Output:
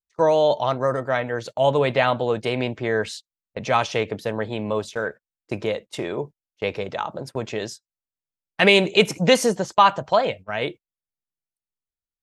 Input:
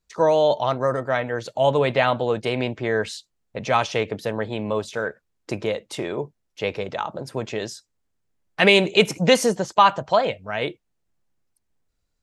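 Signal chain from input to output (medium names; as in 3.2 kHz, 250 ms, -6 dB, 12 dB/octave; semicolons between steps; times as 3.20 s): gate -35 dBFS, range -23 dB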